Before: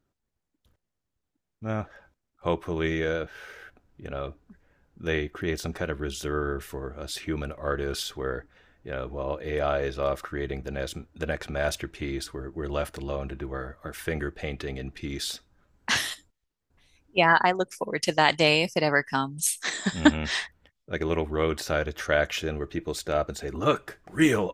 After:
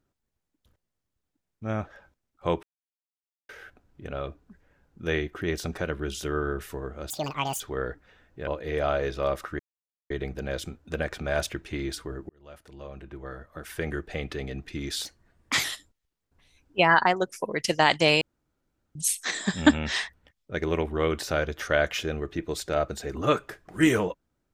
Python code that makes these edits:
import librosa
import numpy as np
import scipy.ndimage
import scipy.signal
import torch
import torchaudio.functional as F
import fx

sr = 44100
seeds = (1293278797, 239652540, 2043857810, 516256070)

y = fx.edit(x, sr, fx.silence(start_s=2.63, length_s=0.86),
    fx.speed_span(start_s=7.1, length_s=0.98, speed=1.95),
    fx.cut(start_s=8.95, length_s=0.32),
    fx.insert_silence(at_s=10.39, length_s=0.51),
    fx.fade_in_span(start_s=12.58, length_s=1.83),
    fx.speed_span(start_s=15.34, length_s=0.69, speed=1.17),
    fx.room_tone_fill(start_s=18.6, length_s=0.74), tone=tone)